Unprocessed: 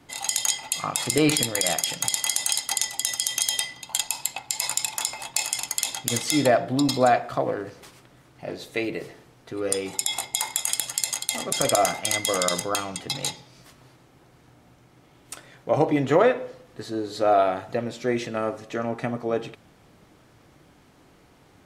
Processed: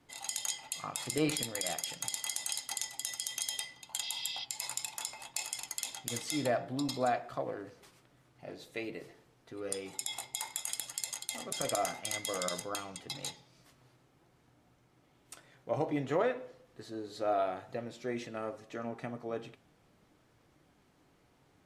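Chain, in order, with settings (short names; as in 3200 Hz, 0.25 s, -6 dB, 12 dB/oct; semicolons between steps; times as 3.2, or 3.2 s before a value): spectral repair 4.05–4.42, 2000–6100 Hz before; flange 0.54 Hz, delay 1.7 ms, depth 6.9 ms, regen +83%; gain -7 dB; MP3 128 kbps 32000 Hz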